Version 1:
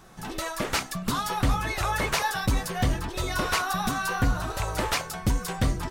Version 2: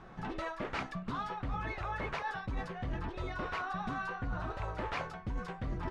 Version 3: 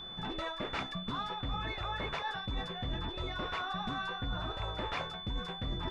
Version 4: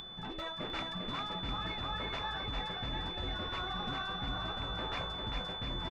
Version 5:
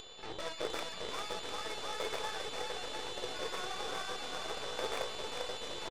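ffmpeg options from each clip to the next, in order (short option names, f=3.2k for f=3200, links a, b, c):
-af "lowpass=2.3k,areverse,acompressor=threshold=-34dB:ratio=10,areverse"
-af "aeval=exprs='val(0)+0.00708*sin(2*PI*3500*n/s)':c=same"
-af "acompressor=mode=upward:threshold=-41dB:ratio=2.5,aecho=1:1:400|700|925|1094|1220:0.631|0.398|0.251|0.158|0.1,volume=-3.5dB"
-af "highpass=f=460:t=q:w=4.9,aeval=exprs='0.0596*(cos(1*acos(clip(val(0)/0.0596,-1,1)))-cos(1*PI/2))+0.0119*(cos(3*acos(clip(val(0)/0.0596,-1,1)))-cos(3*PI/2))+0.00668*(cos(8*acos(clip(val(0)/0.0596,-1,1)))-cos(8*PI/2))':c=same"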